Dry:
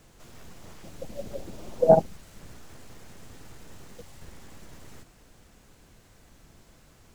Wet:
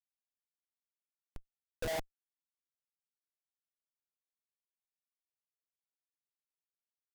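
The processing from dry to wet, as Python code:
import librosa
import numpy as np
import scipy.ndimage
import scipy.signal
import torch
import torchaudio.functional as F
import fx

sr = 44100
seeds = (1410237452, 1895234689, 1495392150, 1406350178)

y = fx.bandpass_q(x, sr, hz=1500.0, q=1.3)
y = fx.schmitt(y, sr, flips_db=-35.5)
y = y * librosa.db_to_amplitude(6.0)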